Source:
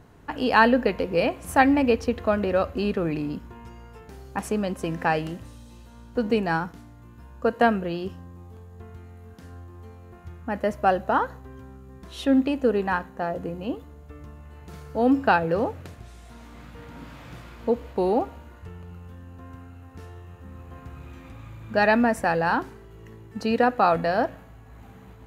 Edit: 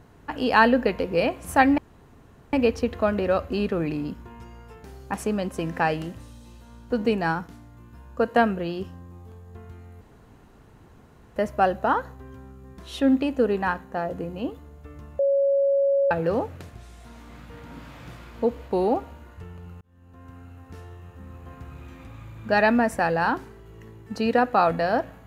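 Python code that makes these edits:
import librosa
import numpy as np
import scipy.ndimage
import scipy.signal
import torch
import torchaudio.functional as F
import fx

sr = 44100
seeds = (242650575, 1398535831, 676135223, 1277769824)

y = fx.edit(x, sr, fx.insert_room_tone(at_s=1.78, length_s=0.75),
    fx.room_tone_fill(start_s=9.26, length_s=1.35),
    fx.bleep(start_s=14.44, length_s=0.92, hz=555.0, db=-17.5),
    fx.fade_in_span(start_s=19.06, length_s=0.64), tone=tone)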